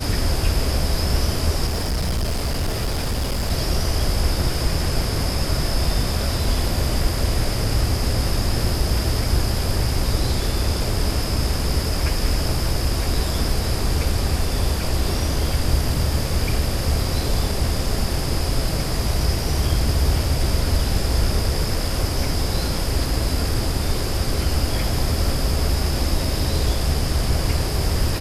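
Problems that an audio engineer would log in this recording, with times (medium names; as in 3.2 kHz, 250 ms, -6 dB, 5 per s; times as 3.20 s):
1.66–3.51 s: clipped -18.5 dBFS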